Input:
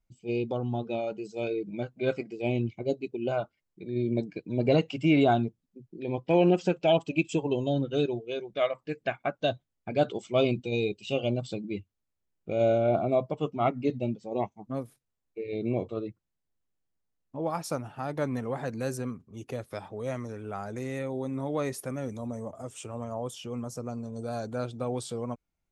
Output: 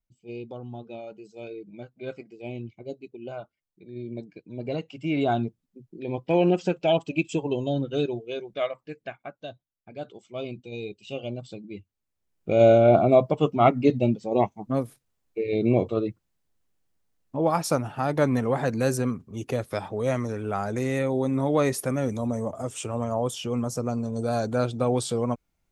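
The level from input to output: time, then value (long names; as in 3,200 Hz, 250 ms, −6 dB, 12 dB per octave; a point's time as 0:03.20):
0:04.93 −7.5 dB
0:05.43 +1 dB
0:08.49 +1 dB
0:09.49 −11.5 dB
0:10.16 −11.5 dB
0:11.05 −5 dB
0:11.72 −5 dB
0:12.54 +8 dB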